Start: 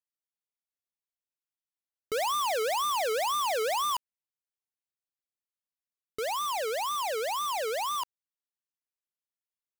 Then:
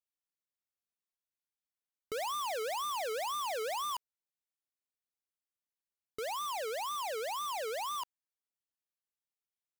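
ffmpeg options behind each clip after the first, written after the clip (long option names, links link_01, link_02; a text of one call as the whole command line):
ffmpeg -i in.wav -af "acompressor=threshold=-31dB:ratio=6,volume=-5dB" out.wav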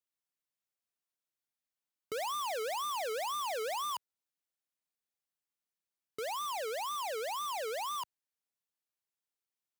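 ffmpeg -i in.wav -af "highpass=90" out.wav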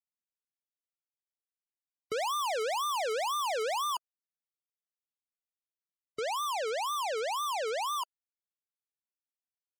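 ffmpeg -i in.wav -af "afftfilt=real='re*gte(hypot(re,im),0.00398)':imag='im*gte(hypot(re,im),0.00398)':win_size=1024:overlap=0.75,volume=4.5dB" out.wav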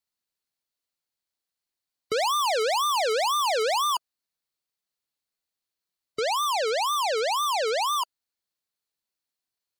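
ffmpeg -i in.wav -af "equalizer=frequency=4300:width_type=o:width=0.3:gain=8,volume=7dB" out.wav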